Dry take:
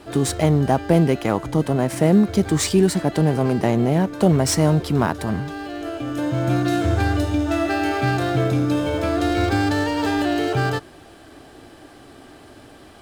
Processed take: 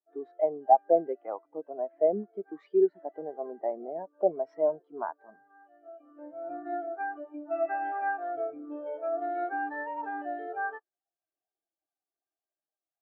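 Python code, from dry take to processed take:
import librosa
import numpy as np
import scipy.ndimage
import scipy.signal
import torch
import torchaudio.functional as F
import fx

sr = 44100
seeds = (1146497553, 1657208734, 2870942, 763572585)

y = fx.bandpass_edges(x, sr, low_hz=550.0, high_hz=2600.0)
y = fx.spectral_expand(y, sr, expansion=2.5)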